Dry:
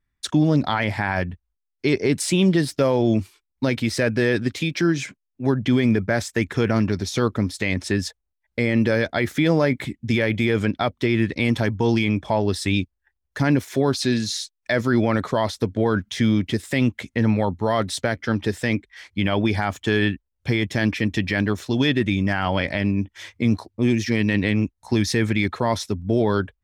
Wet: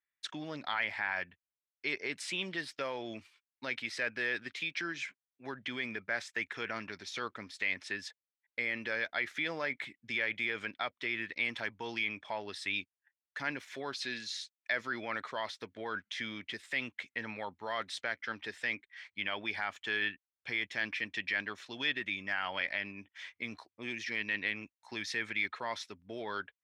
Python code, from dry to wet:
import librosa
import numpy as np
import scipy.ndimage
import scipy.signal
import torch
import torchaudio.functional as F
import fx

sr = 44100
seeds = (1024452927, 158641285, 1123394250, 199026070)

y = fx.bandpass_q(x, sr, hz=2200.0, q=1.1)
y = y * librosa.db_to_amplitude(-6.0)